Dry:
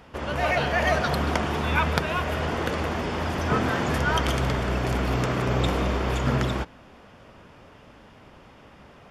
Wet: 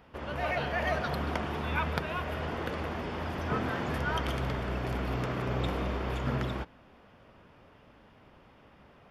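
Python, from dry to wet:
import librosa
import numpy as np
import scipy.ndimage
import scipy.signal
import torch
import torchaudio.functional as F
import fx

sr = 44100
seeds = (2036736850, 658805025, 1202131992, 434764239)

y = fx.peak_eq(x, sr, hz=7300.0, db=-8.5, octaves=1.0)
y = y * librosa.db_to_amplitude(-7.5)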